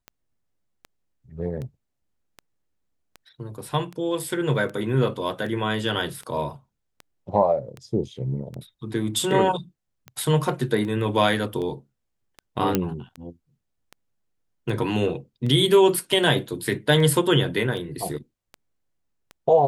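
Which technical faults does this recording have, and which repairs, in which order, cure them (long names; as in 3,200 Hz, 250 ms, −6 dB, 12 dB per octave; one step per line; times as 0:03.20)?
scratch tick 78 rpm −23 dBFS
0:12.75: click −6 dBFS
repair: click removal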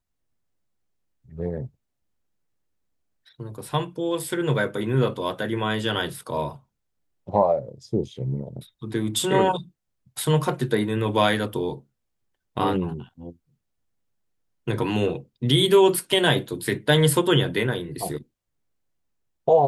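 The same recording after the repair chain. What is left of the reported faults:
none of them is left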